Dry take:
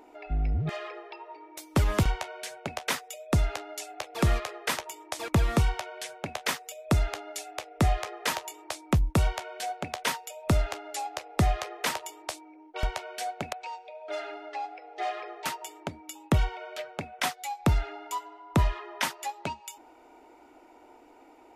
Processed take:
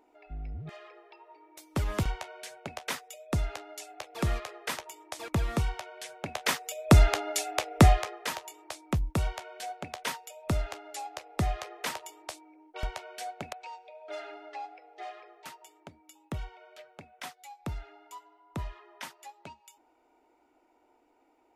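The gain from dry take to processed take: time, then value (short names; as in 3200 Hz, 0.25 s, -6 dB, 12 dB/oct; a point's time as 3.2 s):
0.91 s -11.5 dB
2 s -5 dB
5.97 s -5 dB
6.99 s +7 dB
7.8 s +7 dB
8.24 s -5 dB
14.62 s -5 dB
15.31 s -13 dB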